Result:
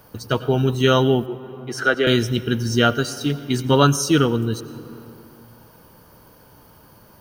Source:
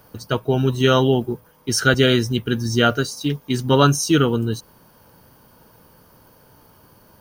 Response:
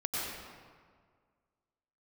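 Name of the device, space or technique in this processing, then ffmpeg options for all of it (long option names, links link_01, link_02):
compressed reverb return: -filter_complex "[0:a]asettb=1/sr,asplit=3[link_01][link_02][link_03];[link_01]atrim=end=1.264[link_04];[link_02]atrim=start=1.26:end=2.07,asetpts=PTS-STARTPTS,afade=type=in:duration=0.004:curve=qsin,afade=type=out:start_time=0.806:duration=0.004:curve=qsin,acrossover=split=300 2600:gain=0.0794 1 0.2[link_05][link_06][link_07];[link_05][link_06][link_07]amix=inputs=3:normalize=0[link_08];[link_03]atrim=start=2.066[link_09];[link_04][link_08]acrossfade=duration=0.004:curve1=hsin:curve2=qsin[link_10];[link_10][link_09]acrossfade=duration=0.004:curve1=qsin:curve2=hsin,asplit=2[link_11][link_12];[1:a]atrim=start_sample=2205[link_13];[link_12][link_13]afir=irnorm=-1:irlink=0,acompressor=threshold=-21dB:ratio=6,volume=-9.5dB[link_14];[link_11][link_14]amix=inputs=2:normalize=0,volume=-1dB"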